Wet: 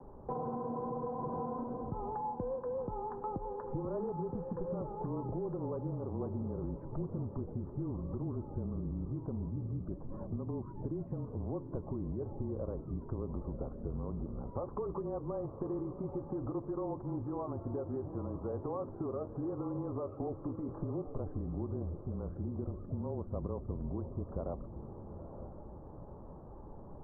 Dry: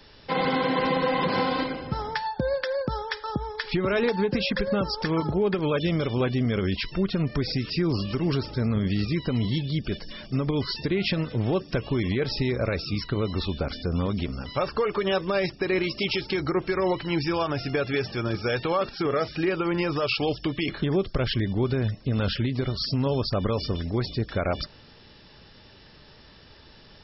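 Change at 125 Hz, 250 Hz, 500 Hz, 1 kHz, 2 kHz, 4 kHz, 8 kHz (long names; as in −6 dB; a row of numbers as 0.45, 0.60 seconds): −11.5 dB, −12.0 dB, −12.5 dB, −12.0 dB, below −35 dB, below −40 dB, can't be measured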